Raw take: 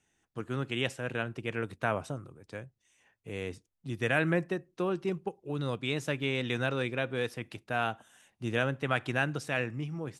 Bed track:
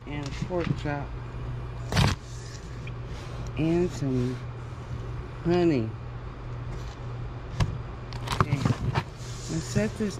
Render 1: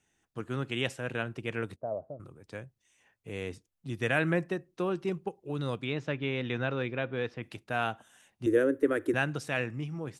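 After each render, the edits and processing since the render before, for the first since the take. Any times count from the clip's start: 1.76–2.20 s: four-pole ladder low-pass 670 Hz, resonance 70%; 5.84–7.43 s: distance through air 190 m; 8.46–9.14 s: FFT filter 100 Hz 0 dB, 170 Hz -30 dB, 290 Hz +14 dB, 510 Hz +9 dB, 740 Hz -14 dB, 1.8 kHz -1 dB, 2.6 kHz -15 dB, 4.9 kHz -11 dB, 8.1 kHz +1 dB, 13 kHz +10 dB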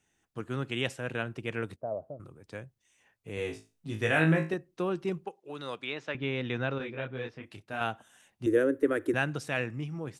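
3.35–4.54 s: flutter echo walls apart 3.2 m, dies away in 0.29 s; 5.25–6.15 s: frequency weighting A; 6.78–7.81 s: detune thickener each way 21 cents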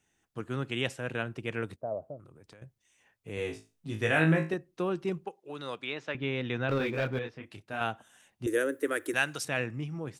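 2.18–2.62 s: compression 16:1, threshold -49 dBFS; 6.69–7.19 s: waveshaping leveller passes 2; 8.47–9.45 s: tilt EQ +3.5 dB/octave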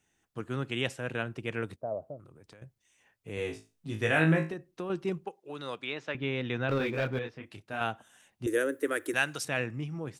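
4.50–4.90 s: compression, threshold -32 dBFS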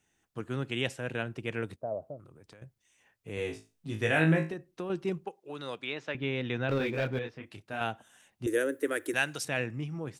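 dynamic bell 1.2 kHz, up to -4 dB, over -47 dBFS, Q 2.8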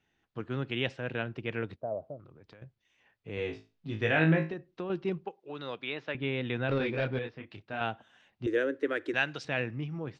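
low-pass 4.5 kHz 24 dB/octave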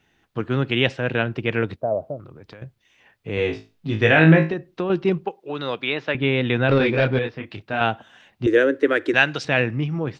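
trim +12 dB; peak limiter -2 dBFS, peak gain reduction 2 dB

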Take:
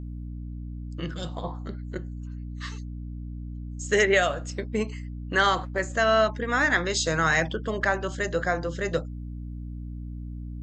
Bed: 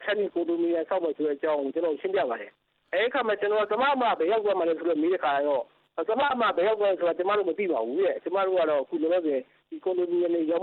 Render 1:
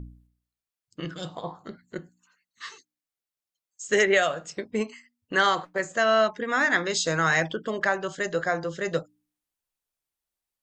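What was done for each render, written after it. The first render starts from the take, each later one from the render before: de-hum 60 Hz, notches 5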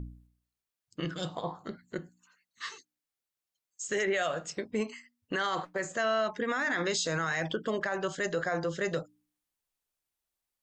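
peak limiter -21.5 dBFS, peak gain reduction 11.5 dB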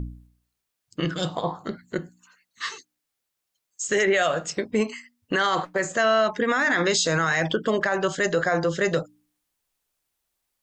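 trim +8.5 dB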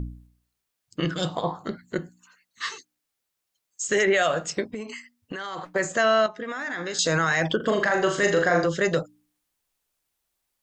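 4.70–5.72 s: compression 16:1, threshold -29 dBFS; 6.26–6.99 s: feedback comb 60 Hz, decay 1.8 s, harmonics odd, mix 70%; 7.56–8.67 s: flutter echo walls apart 6.8 m, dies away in 0.46 s

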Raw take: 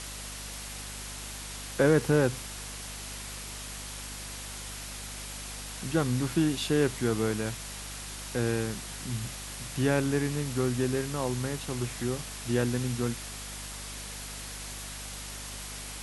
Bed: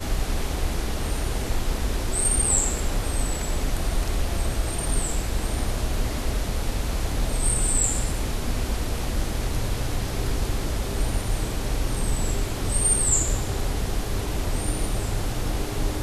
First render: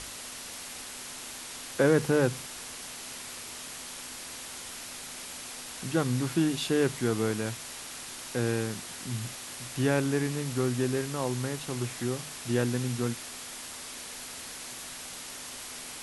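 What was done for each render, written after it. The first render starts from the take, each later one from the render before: hum notches 50/100/150/200 Hz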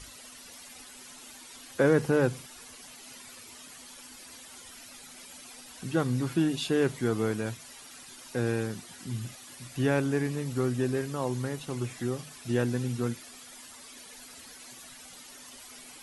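noise reduction 12 dB, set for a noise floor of -42 dBFS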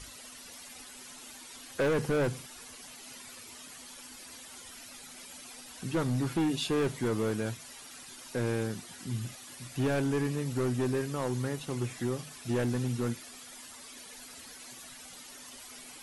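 hard clipper -24.5 dBFS, distortion -9 dB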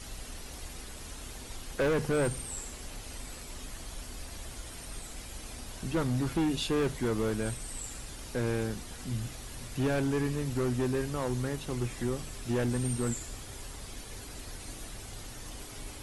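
add bed -19 dB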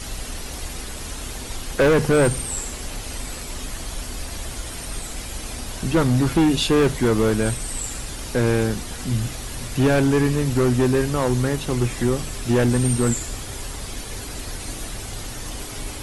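trim +11.5 dB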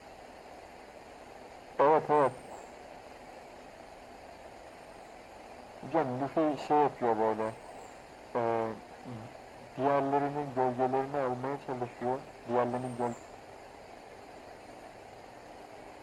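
comb filter that takes the minimum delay 0.43 ms; band-pass filter 760 Hz, Q 2.4

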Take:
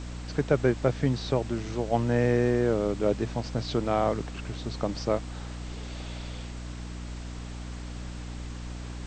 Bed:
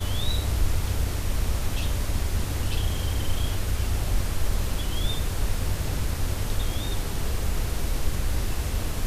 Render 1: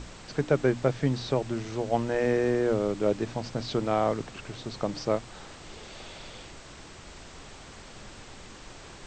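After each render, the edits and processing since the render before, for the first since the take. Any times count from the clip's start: hum notches 60/120/180/240/300 Hz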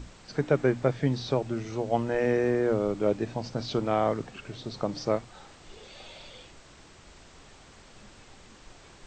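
noise print and reduce 6 dB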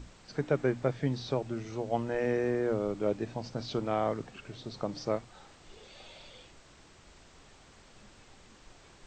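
trim -4.5 dB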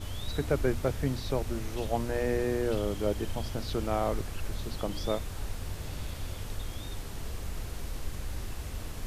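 add bed -10.5 dB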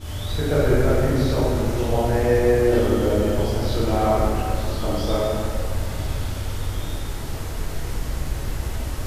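plate-style reverb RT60 2.5 s, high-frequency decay 0.55×, DRR -9.5 dB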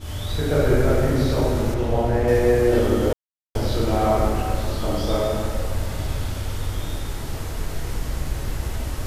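1.74–2.28 s: treble shelf 3.8 kHz -10 dB; 3.13–3.55 s: mute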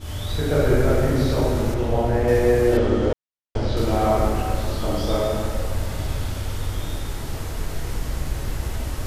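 2.77–3.77 s: distance through air 100 m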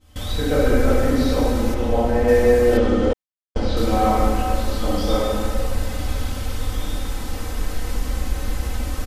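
gate with hold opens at -21 dBFS; comb 3.9 ms, depth 74%

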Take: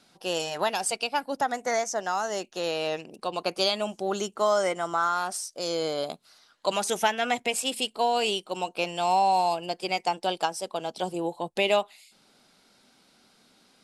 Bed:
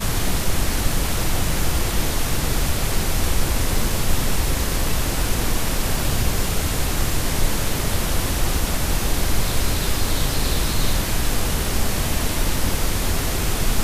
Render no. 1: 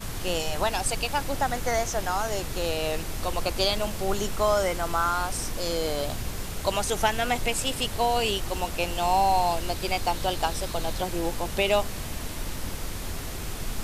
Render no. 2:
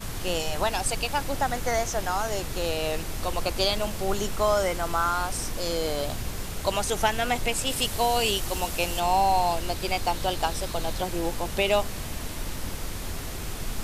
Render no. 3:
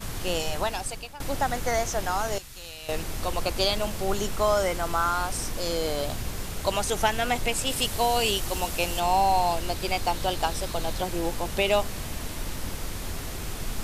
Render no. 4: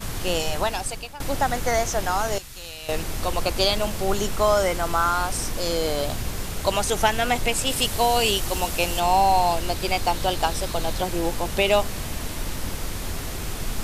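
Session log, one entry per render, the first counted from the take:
add bed -12 dB
7.70–9.00 s: treble shelf 4.5 kHz +6.5 dB
0.49–1.20 s: fade out, to -19.5 dB; 2.38–2.89 s: amplifier tone stack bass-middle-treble 5-5-5
trim +3.5 dB

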